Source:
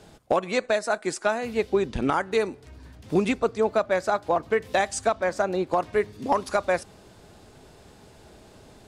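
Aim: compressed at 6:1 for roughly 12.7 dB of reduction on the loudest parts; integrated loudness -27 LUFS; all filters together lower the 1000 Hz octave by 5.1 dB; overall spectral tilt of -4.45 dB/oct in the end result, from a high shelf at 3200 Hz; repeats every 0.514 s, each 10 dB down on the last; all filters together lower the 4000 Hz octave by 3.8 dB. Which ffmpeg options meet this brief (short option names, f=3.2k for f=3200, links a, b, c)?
-af "equalizer=f=1k:t=o:g=-7.5,highshelf=f=3.2k:g=4.5,equalizer=f=4k:t=o:g=-7.5,acompressor=threshold=-33dB:ratio=6,aecho=1:1:514|1028|1542|2056:0.316|0.101|0.0324|0.0104,volume=10.5dB"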